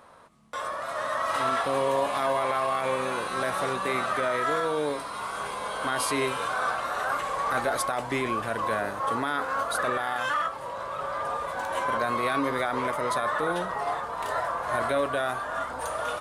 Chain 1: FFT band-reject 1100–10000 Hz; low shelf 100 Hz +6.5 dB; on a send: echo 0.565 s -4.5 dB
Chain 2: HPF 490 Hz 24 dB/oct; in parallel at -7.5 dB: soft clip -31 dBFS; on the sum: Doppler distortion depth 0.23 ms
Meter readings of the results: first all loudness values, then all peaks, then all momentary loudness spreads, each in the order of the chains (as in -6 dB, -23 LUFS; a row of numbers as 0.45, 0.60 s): -29.0, -27.0 LUFS; -13.0, -15.0 dBFS; 7, 5 LU